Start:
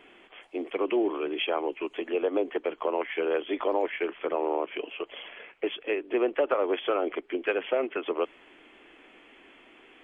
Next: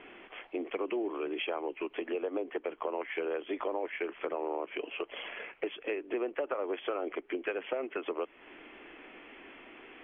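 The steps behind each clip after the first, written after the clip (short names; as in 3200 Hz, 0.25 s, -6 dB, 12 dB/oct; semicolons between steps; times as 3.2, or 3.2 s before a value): LPF 3000 Hz 24 dB/oct; compressor 3:1, threshold -38 dBFS, peak gain reduction 13 dB; gain +3.5 dB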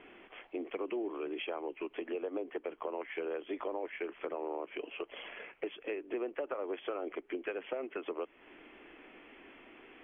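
low shelf 410 Hz +3.5 dB; gain -5 dB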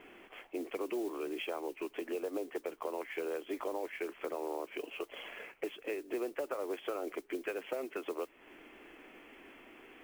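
modulation noise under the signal 21 dB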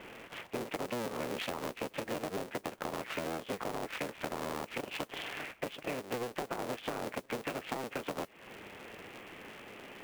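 cycle switcher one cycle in 3, inverted; compressor, threshold -40 dBFS, peak gain reduction 8 dB; gain +6 dB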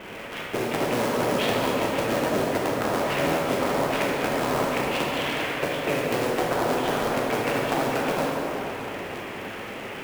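plate-style reverb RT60 3.8 s, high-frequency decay 0.55×, DRR -4.5 dB; gain +8 dB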